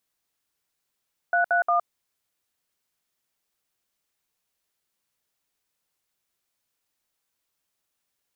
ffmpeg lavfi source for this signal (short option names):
-f lavfi -i "aevalsrc='0.0891*clip(min(mod(t,0.177),0.114-mod(t,0.177))/0.002,0,1)*(eq(floor(t/0.177),0)*(sin(2*PI*697*mod(t,0.177))+sin(2*PI*1477*mod(t,0.177)))+eq(floor(t/0.177),1)*(sin(2*PI*697*mod(t,0.177))+sin(2*PI*1477*mod(t,0.177)))+eq(floor(t/0.177),2)*(sin(2*PI*697*mod(t,0.177))+sin(2*PI*1209*mod(t,0.177))))':d=0.531:s=44100"